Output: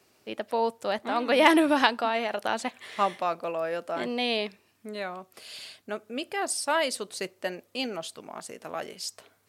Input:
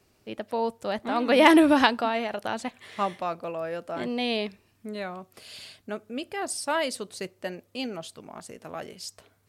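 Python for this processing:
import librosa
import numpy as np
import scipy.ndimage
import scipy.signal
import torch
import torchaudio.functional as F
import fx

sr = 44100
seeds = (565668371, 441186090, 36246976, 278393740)

p1 = fx.rider(x, sr, range_db=5, speed_s=0.5)
p2 = x + F.gain(torch.from_numpy(p1), -1.5).numpy()
p3 = fx.highpass(p2, sr, hz=350.0, slope=6)
y = F.gain(torch.from_numpy(p3), -4.5).numpy()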